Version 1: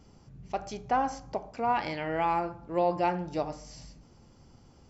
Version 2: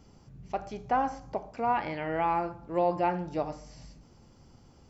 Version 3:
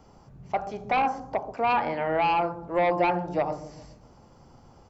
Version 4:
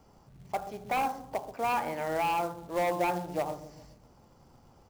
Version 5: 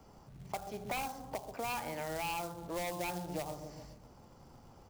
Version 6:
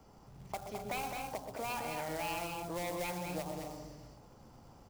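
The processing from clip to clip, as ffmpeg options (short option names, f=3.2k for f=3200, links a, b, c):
-filter_complex "[0:a]acrossover=split=2900[a][b];[b]acompressor=threshold=-56dB:ratio=4:attack=1:release=60[c];[a][c]amix=inputs=2:normalize=0"
-filter_complex "[0:a]acrossover=split=580|1200[a][b][c];[a]aecho=1:1:135|270|405|540|675|810:0.631|0.284|0.128|0.0575|0.0259|0.0116[d];[b]aeval=exprs='0.0841*sin(PI/2*2.51*val(0)/0.0841)':c=same[e];[d][e][c]amix=inputs=3:normalize=0"
-af "acrusher=bits=4:mode=log:mix=0:aa=0.000001,volume=-5.5dB"
-filter_complex "[0:a]acrossover=split=140|3000[a][b][c];[b]acompressor=threshold=-39dB:ratio=6[d];[a][d][c]amix=inputs=3:normalize=0,volume=1.5dB"
-af "aecho=1:1:125.4|212.8|253.6:0.282|0.562|0.282,volume=-1.5dB"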